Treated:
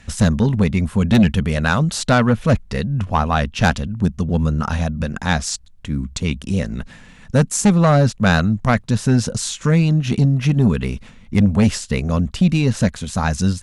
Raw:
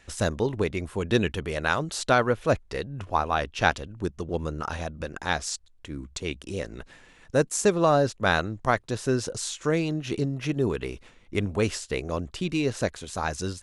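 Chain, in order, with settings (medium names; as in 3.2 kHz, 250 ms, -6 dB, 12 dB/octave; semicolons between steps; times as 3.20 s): resonant low shelf 270 Hz +6.5 dB, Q 3; Chebyshev shaper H 5 -11 dB, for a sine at -3.5 dBFS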